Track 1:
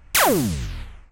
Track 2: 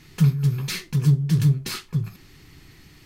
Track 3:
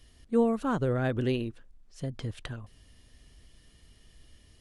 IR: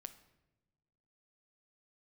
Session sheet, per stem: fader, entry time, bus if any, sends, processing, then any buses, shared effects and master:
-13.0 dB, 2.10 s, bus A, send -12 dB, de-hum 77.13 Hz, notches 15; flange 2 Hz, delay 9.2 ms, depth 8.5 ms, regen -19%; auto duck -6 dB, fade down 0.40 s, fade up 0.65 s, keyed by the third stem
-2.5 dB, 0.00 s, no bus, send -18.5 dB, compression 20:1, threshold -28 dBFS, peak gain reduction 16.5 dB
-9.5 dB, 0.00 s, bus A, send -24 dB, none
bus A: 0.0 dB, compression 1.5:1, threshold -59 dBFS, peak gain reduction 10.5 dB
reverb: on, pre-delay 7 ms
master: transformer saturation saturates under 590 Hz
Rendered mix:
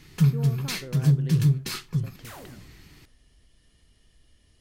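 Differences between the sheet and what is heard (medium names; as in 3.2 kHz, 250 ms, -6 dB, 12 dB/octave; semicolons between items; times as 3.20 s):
stem 2: missing compression 20:1, threshold -28 dBFS, peak gain reduction 16.5 dB; stem 3 -9.5 dB -> -2.0 dB; master: missing transformer saturation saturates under 590 Hz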